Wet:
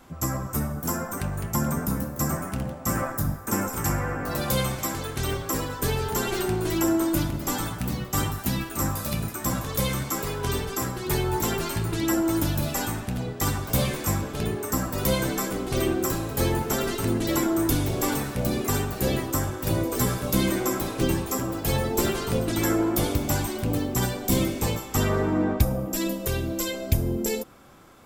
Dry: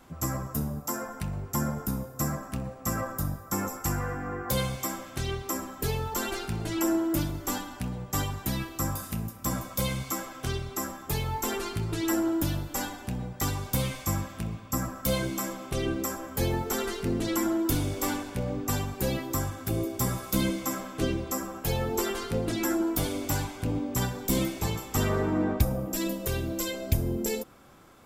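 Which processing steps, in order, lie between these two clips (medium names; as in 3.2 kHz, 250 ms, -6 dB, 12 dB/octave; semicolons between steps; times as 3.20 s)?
ever faster or slower copies 340 ms, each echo +2 st, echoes 2, each echo -6 dB; trim +3 dB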